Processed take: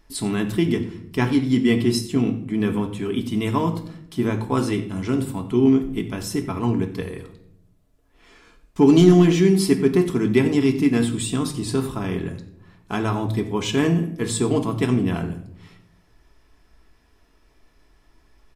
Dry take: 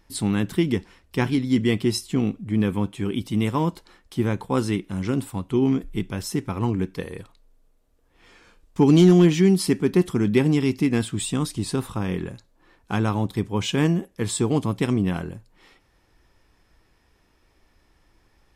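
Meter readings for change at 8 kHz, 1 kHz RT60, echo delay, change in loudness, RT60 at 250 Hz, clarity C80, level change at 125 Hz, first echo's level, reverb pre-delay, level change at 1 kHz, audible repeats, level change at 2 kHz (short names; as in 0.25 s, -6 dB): +1.0 dB, 0.60 s, 90 ms, +2.0 dB, 1.1 s, 13.5 dB, +0.5 dB, -17.5 dB, 3 ms, +2.0 dB, 1, +2.0 dB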